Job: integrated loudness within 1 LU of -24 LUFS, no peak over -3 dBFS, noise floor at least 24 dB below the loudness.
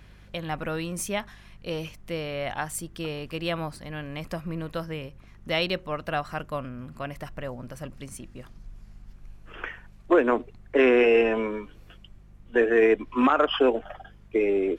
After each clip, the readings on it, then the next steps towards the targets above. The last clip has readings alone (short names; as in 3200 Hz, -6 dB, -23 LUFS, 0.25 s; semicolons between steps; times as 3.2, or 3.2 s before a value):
hum 50 Hz; harmonics up to 200 Hz; hum level -49 dBFS; loudness -26.5 LUFS; peak -8.5 dBFS; loudness target -24.0 LUFS
-> de-hum 50 Hz, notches 4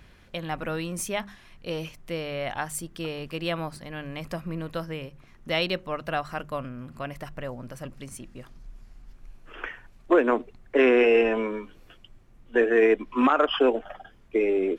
hum none; loudness -26.5 LUFS; peak -8.5 dBFS; loudness target -24.0 LUFS
-> gain +2.5 dB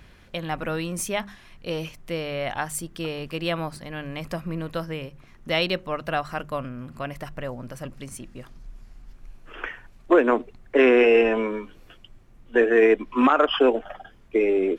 loudness -24.0 LUFS; peak -6.0 dBFS; noise floor -51 dBFS